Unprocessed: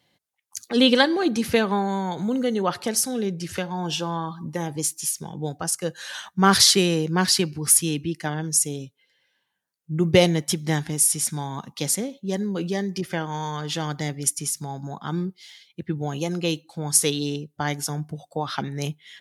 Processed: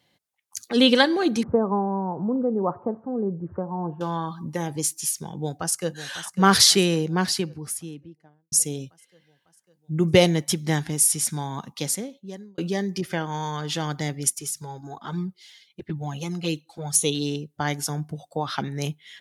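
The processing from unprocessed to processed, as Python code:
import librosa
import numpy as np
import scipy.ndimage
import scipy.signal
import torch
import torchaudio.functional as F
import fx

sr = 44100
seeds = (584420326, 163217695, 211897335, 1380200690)

y = fx.ellip_lowpass(x, sr, hz=1100.0, order=4, stop_db=80, at=(1.43, 4.01))
y = fx.echo_throw(y, sr, start_s=5.34, length_s=0.6, ms=550, feedback_pct=65, wet_db=-12.5)
y = fx.studio_fade_out(y, sr, start_s=6.74, length_s=1.78)
y = fx.env_flanger(y, sr, rest_ms=6.0, full_db=-18.0, at=(14.3, 17.15))
y = fx.edit(y, sr, fx.fade_out_span(start_s=11.68, length_s=0.9), tone=tone)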